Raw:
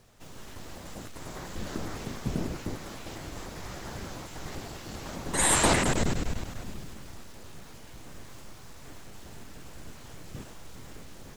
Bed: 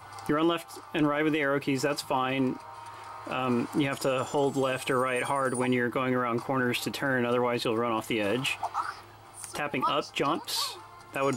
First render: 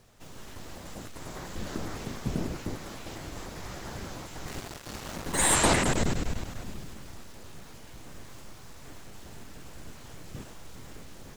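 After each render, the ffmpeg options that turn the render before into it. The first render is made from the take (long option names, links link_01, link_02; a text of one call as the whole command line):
ffmpeg -i in.wav -filter_complex "[0:a]asettb=1/sr,asplit=3[link_01][link_02][link_03];[link_01]atrim=end=4.474[link_04];[link_02]atrim=start=4.47:end=5.55,asetpts=PTS-STARTPTS,afade=type=in:duration=0.004:curve=qsin,afade=type=out:start_time=1.076:duration=0.004:curve=qsin,acrusher=bits=5:mix=0:aa=0.5[link_05];[link_03]atrim=start=5.546[link_06];[link_04][link_05]acrossfade=duration=0.004:curve1=hsin:curve2=qsin[link_07];[link_07][link_06]acrossfade=duration=0.004:curve1=qsin:curve2=hsin" out.wav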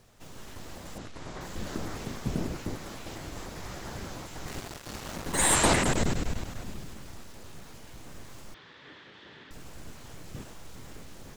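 ffmpeg -i in.wav -filter_complex "[0:a]asettb=1/sr,asplit=3[link_01][link_02][link_03];[link_01]atrim=end=0.984[link_04];[link_02]atrim=start=0.98:end=1.41,asetpts=PTS-STARTPTS,afade=type=in:duration=0.004:curve=qsin,afade=type=out:start_time=0.426:duration=0.004:curve=qsin,lowpass=5800[link_05];[link_03]atrim=start=1.406[link_06];[link_04][link_05]acrossfade=duration=0.004:curve1=hsin:curve2=qsin[link_07];[link_07][link_06]acrossfade=duration=0.004:curve1=qsin:curve2=hsin,asettb=1/sr,asplit=3[link_08][link_09][link_10];[link_08]atrim=end=8.544[link_11];[link_09]atrim=start=8.54:end=9.51,asetpts=PTS-STARTPTS,afade=type=in:duration=0.004:curve=qsin,afade=type=out:start_time=0.966:duration=0.004:curve=qsin,highpass=200,equalizer=frequency=220:width_type=q:width=4:gain=-6,equalizer=frequency=700:width_type=q:width=4:gain=-8,equalizer=frequency=1800:width_type=q:width=4:gain=8,equalizer=frequency=3400:width_type=q:width=4:gain=8,lowpass=frequency=4100:width=0.5412,lowpass=frequency=4100:width=1.3066[link_12];[link_10]atrim=start=9.506[link_13];[link_11][link_12]acrossfade=duration=0.004:curve1=hsin:curve2=qsin[link_14];[link_14][link_13]acrossfade=duration=0.004:curve1=qsin:curve2=hsin" out.wav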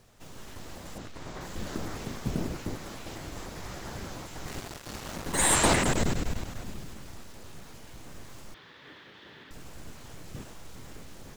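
ffmpeg -i in.wav -af "acrusher=bits=7:mode=log:mix=0:aa=0.000001" out.wav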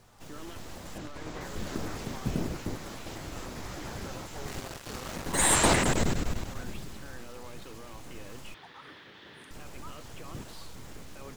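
ffmpeg -i in.wav -i bed.wav -filter_complex "[1:a]volume=-21dB[link_01];[0:a][link_01]amix=inputs=2:normalize=0" out.wav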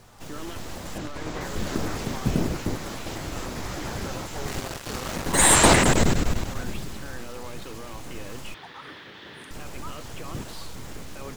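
ffmpeg -i in.wav -af "volume=7dB,alimiter=limit=-2dB:level=0:latency=1" out.wav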